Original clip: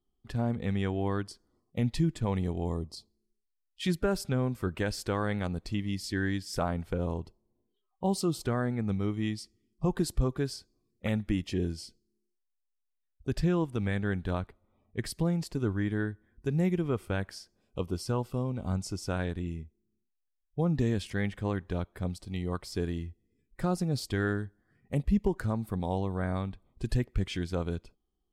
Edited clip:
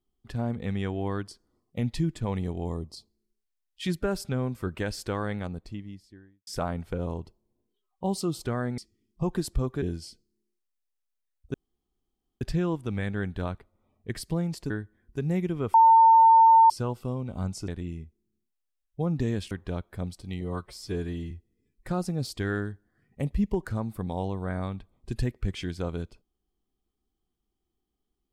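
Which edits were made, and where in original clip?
5.10–6.47 s: studio fade out
8.78–9.40 s: delete
10.44–11.58 s: delete
13.30 s: insert room tone 0.87 s
15.59–15.99 s: delete
17.03–17.99 s: bleep 903 Hz -12.5 dBFS
18.97–19.27 s: delete
21.10–21.54 s: delete
22.44–23.04 s: stretch 1.5×

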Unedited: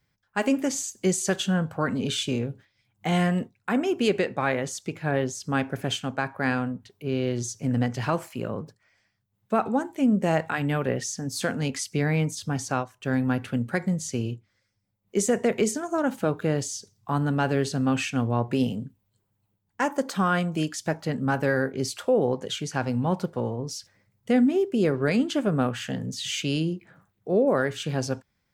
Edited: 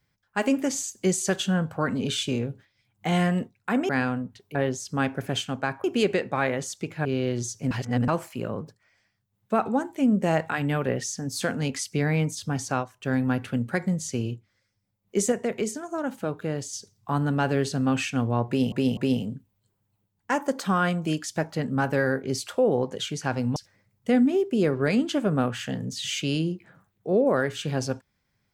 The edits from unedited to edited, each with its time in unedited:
3.89–5.10 s: swap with 6.39–7.05 s
7.71–8.08 s: reverse
15.32–16.73 s: gain -4.5 dB
18.47–18.72 s: loop, 3 plays
23.06–23.77 s: delete

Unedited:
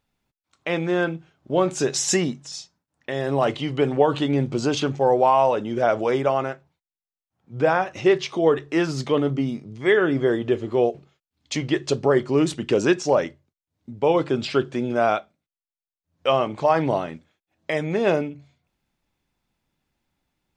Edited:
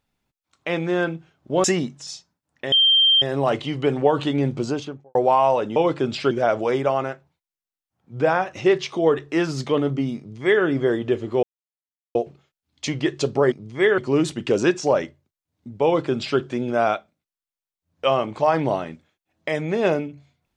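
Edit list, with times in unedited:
1.64–2.09 s: delete
3.17 s: add tone 3.16 kHz -12.5 dBFS 0.50 s
4.47–5.10 s: studio fade out
9.58–10.04 s: copy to 12.20 s
10.83 s: insert silence 0.72 s
14.06–14.61 s: copy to 5.71 s

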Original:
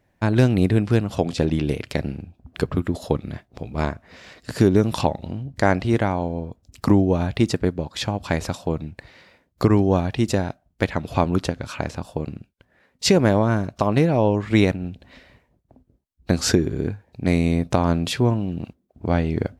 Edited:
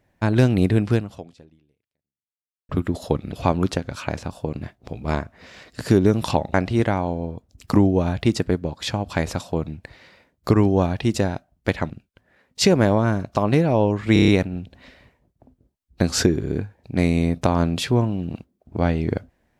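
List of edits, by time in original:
0.93–2.69 s: fade out exponential
5.24–5.68 s: delete
11.04–12.34 s: move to 3.32 s
14.57 s: stutter 0.03 s, 6 plays

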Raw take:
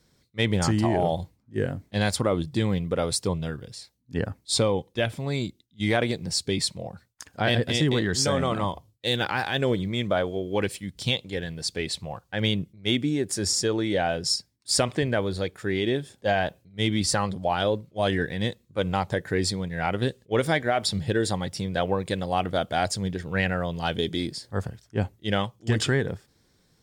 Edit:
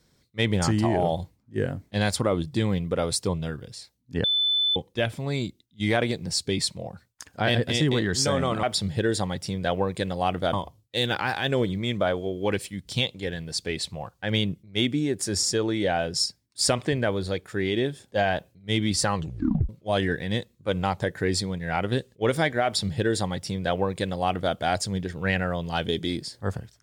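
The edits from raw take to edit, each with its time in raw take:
4.24–4.76 s: bleep 3.51 kHz -20 dBFS
17.24 s: tape stop 0.55 s
20.74–22.64 s: copy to 8.63 s

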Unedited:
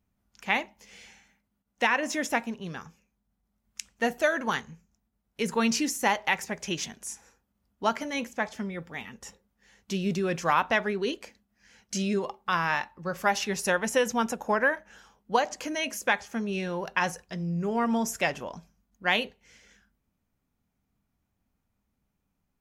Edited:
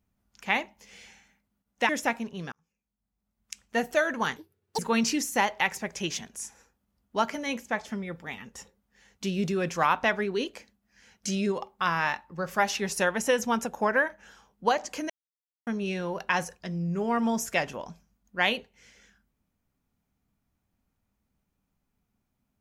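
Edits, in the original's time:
1.89–2.16 s: delete
2.79–4.12 s: fade in
4.63–5.46 s: speed 194%
15.77–16.34 s: mute

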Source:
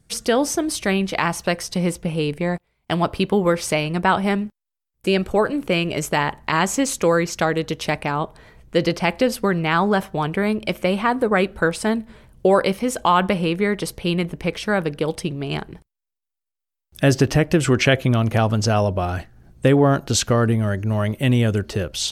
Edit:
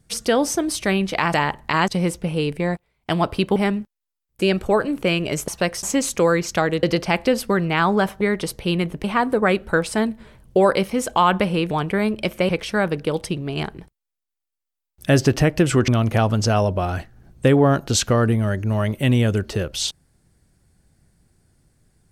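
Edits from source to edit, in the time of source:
1.34–1.69 s: swap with 6.13–6.67 s
3.37–4.21 s: delete
7.67–8.77 s: delete
10.15–10.93 s: swap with 13.60–14.43 s
17.82–18.08 s: delete

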